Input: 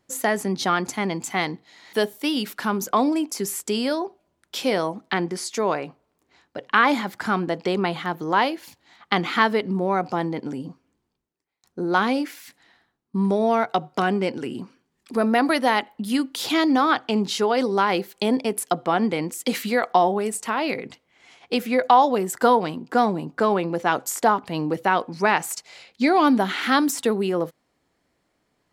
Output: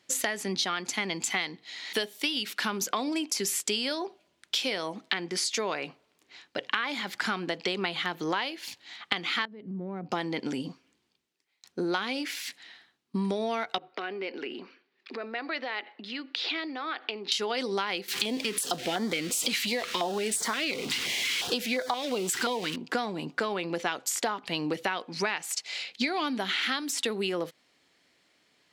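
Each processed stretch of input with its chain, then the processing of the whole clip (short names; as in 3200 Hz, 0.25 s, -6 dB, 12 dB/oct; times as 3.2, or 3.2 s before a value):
9.45–10.12 band-pass 150 Hz, Q 1.3 + compressor, threshold -29 dBFS
13.78–17.32 compressor, threshold -31 dBFS + speaker cabinet 360–3900 Hz, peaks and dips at 380 Hz +5 dB, 960 Hz -3 dB, 3200 Hz -7 dB
18.08–22.76 zero-crossing step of -28.5 dBFS + stepped notch 5.7 Hz 590–2700 Hz
whole clip: weighting filter D; compressor 10:1, threshold -26 dBFS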